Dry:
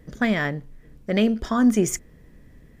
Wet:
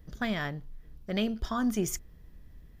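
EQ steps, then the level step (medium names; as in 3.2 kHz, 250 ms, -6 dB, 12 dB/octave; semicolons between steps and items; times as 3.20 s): ten-band graphic EQ 125 Hz -6 dB, 250 Hz -9 dB, 500 Hz -10 dB, 1 kHz -3 dB, 2 kHz -10 dB, 8 kHz -10 dB; +1.0 dB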